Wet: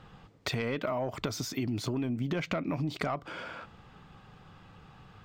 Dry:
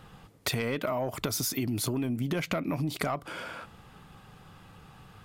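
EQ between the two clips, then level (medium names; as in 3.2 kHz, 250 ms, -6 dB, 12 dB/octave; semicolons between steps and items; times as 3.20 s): boxcar filter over 4 samples; -1.5 dB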